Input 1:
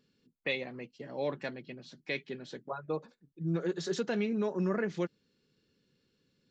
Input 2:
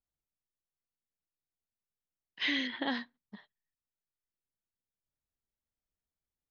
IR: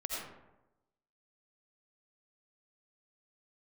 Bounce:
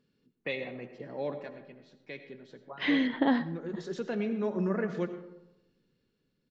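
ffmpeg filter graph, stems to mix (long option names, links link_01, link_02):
-filter_complex "[0:a]volume=4.5dB,afade=type=out:start_time=0.92:duration=0.56:silence=0.251189,afade=type=in:start_time=3.65:duration=0.74:silence=0.446684,asplit=2[link_01][link_02];[link_02]volume=-8dB[link_03];[1:a]tiltshelf=frequency=1400:gain=6,adelay=400,volume=-2dB,asplit=2[link_04][link_05];[link_05]volume=-17.5dB[link_06];[2:a]atrim=start_sample=2205[link_07];[link_03][link_06]amix=inputs=2:normalize=0[link_08];[link_08][link_07]afir=irnorm=-1:irlink=0[link_09];[link_01][link_04][link_09]amix=inputs=3:normalize=0,highshelf=frequency=3400:gain=-9.5,dynaudnorm=framelen=200:gausssize=11:maxgain=6dB"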